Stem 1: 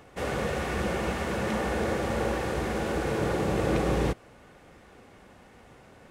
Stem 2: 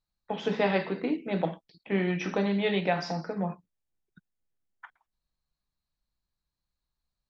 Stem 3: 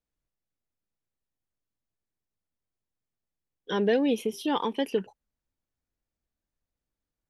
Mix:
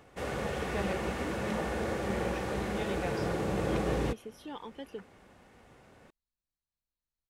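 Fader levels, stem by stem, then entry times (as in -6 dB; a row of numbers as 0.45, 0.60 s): -5.0, -11.5, -15.5 dB; 0.00, 0.15, 0.00 s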